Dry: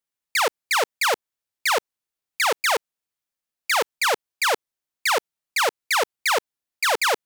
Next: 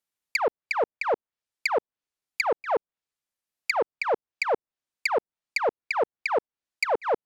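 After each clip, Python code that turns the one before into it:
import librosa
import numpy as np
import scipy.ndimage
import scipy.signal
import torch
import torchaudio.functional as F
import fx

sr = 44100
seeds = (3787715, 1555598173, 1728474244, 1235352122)

y = fx.env_lowpass_down(x, sr, base_hz=740.0, full_db=-21.0)
y = fx.transient(y, sr, attack_db=3, sustain_db=-2)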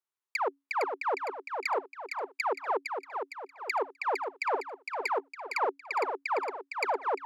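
y = scipy.signal.sosfilt(scipy.signal.cheby1(6, 9, 270.0, 'highpass', fs=sr, output='sos'), x)
y = fx.echo_feedback(y, sr, ms=459, feedback_pct=46, wet_db=-5.5)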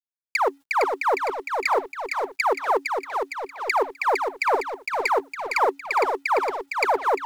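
y = fx.law_mismatch(x, sr, coded='mu')
y = y * 10.0 ** (7.5 / 20.0)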